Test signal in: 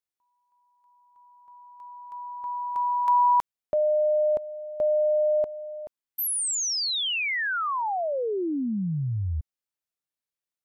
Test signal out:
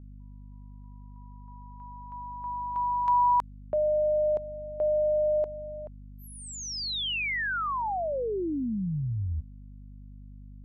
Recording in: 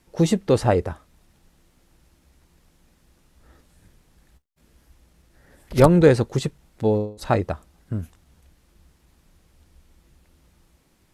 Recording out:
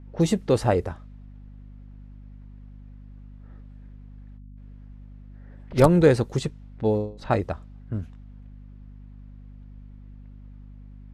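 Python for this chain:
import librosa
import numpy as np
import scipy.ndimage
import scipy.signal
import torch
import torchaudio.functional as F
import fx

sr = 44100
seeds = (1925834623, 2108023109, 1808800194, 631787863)

y = fx.add_hum(x, sr, base_hz=50, snr_db=16)
y = fx.env_lowpass(y, sr, base_hz=1900.0, full_db=-16.5)
y = F.gain(torch.from_numpy(y), -2.5).numpy()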